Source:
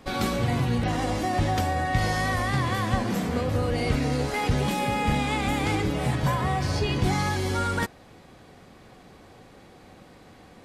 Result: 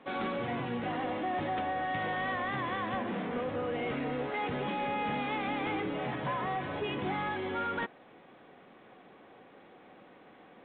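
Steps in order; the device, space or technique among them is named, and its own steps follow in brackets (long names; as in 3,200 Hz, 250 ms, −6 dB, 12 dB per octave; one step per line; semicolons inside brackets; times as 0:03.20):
telephone (band-pass filter 250–3,200 Hz; soft clipping −23 dBFS, distortion −17 dB; level −3.5 dB; A-law companding 64 kbit/s 8,000 Hz)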